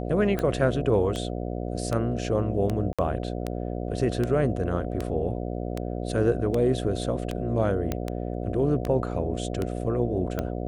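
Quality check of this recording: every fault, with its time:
buzz 60 Hz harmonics 12 -31 dBFS
tick 78 rpm -15 dBFS
2.93–2.99 s: dropout 56 ms
7.92 s: pop -13 dBFS

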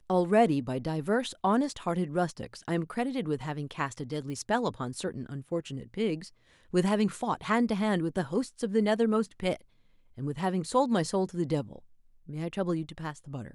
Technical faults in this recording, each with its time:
4.30 s: pop -28 dBFS

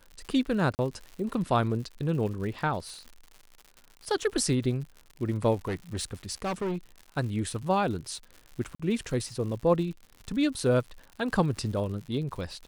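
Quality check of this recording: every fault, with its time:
crackle 120 per s -38 dBFS
0.75–0.79 s: dropout 39 ms
5.65–6.77 s: clipped -27 dBFS
8.75–8.79 s: dropout 45 ms

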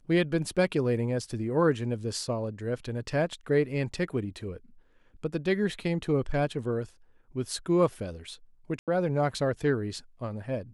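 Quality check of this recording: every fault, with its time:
8.79–8.88 s: dropout 87 ms

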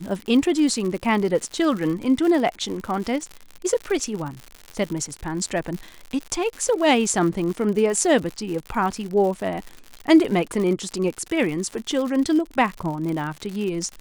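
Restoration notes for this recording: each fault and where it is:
crackle 110 per s -28 dBFS

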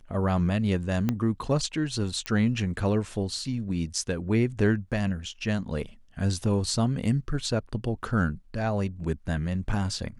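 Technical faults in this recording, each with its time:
1.09 s: pop -13 dBFS
2.26 s: pop -14 dBFS

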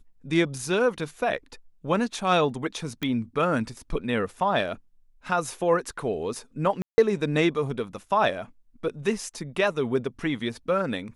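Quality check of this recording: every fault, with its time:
3.03 s: pop -15 dBFS
6.82–6.98 s: dropout 160 ms

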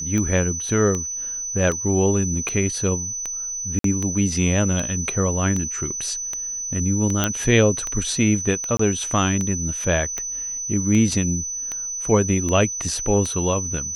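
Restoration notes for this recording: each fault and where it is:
tick 78 rpm -13 dBFS
whine 6 kHz -26 dBFS
3.79–3.84 s: dropout 53 ms
7.24 s: pop -4 dBFS
8.77–8.79 s: dropout 24 ms

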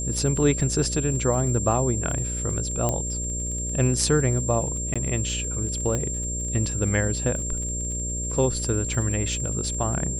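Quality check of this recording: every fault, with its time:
buzz 60 Hz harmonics 10 -31 dBFS
crackle 28 per s -33 dBFS
whine 7.4 kHz -29 dBFS
2.89 s: pop -11 dBFS
4.94–4.96 s: dropout 16 ms
5.95 s: pop -14 dBFS

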